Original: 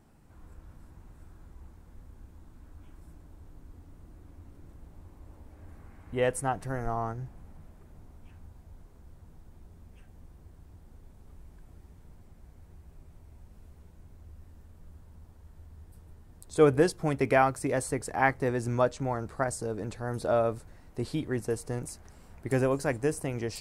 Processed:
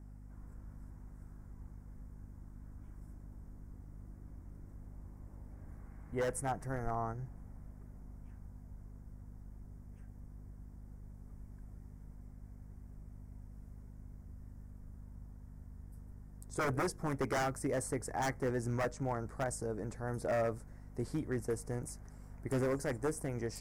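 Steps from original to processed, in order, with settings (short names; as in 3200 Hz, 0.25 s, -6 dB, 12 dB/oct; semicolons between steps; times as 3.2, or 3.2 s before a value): hum 50 Hz, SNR 13 dB; wavefolder -22 dBFS; band shelf 3300 Hz -11.5 dB 1 oct; gain -5 dB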